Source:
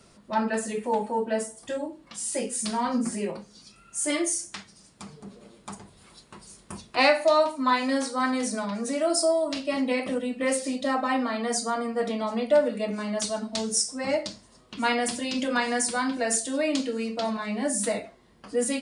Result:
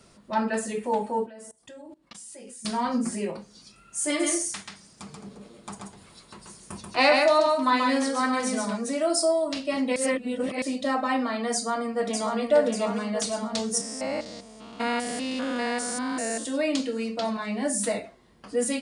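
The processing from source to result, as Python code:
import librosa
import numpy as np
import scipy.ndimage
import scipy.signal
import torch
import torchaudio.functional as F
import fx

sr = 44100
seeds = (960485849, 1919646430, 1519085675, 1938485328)

y = fx.level_steps(x, sr, step_db=22, at=(1.26, 2.65))
y = fx.echo_single(y, sr, ms=134, db=-3.5, at=(4.19, 8.76), fade=0.02)
y = fx.echo_throw(y, sr, start_s=11.54, length_s=0.85, ms=590, feedback_pct=60, wet_db=-4.0)
y = fx.spec_steps(y, sr, hold_ms=200, at=(13.77, 16.43), fade=0.02)
y = fx.edit(y, sr, fx.reverse_span(start_s=9.96, length_s=0.66), tone=tone)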